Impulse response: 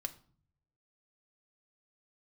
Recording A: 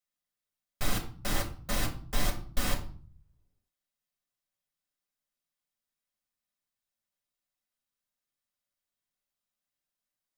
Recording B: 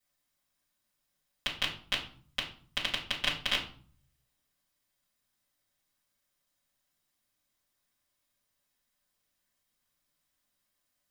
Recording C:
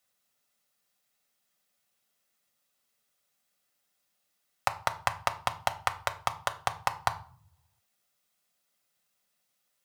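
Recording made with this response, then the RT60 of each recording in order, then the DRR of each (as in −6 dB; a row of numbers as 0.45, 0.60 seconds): C; 0.45, 0.45, 0.50 seconds; −2.0, −9.0, 7.0 decibels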